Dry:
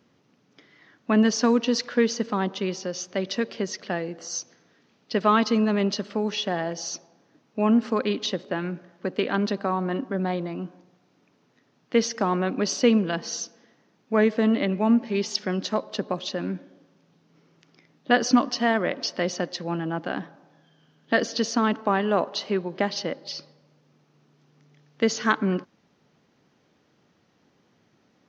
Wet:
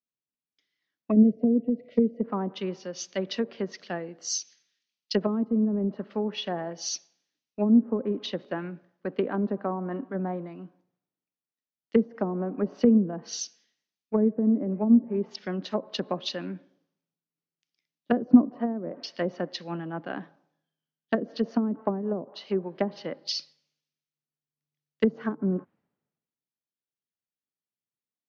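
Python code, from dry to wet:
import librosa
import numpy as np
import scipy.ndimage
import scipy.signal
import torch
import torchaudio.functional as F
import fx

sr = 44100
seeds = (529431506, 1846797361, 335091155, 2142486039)

y = fx.spec_box(x, sr, start_s=1.11, length_s=1.13, low_hz=730.0, high_hz=1900.0, gain_db=-27)
y = scipy.signal.sosfilt(scipy.signal.butter(2, 100.0, 'highpass', fs=sr, output='sos'), y)
y = fx.env_lowpass_down(y, sr, base_hz=340.0, full_db=-18.5)
y = fx.band_widen(y, sr, depth_pct=100)
y = F.gain(torch.from_numpy(y), -2.5).numpy()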